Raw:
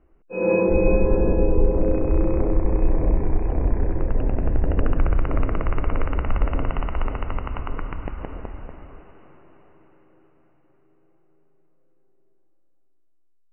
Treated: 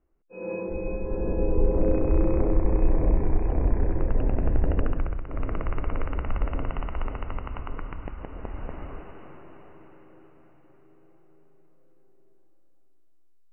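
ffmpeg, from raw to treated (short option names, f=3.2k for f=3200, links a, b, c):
-af "volume=17.5dB,afade=t=in:st=1.02:d=0.84:silence=0.281838,afade=t=out:st=4.66:d=0.59:silence=0.223872,afade=t=in:st=5.25:d=0.25:silence=0.334965,afade=t=in:st=8.33:d=0.51:silence=0.316228"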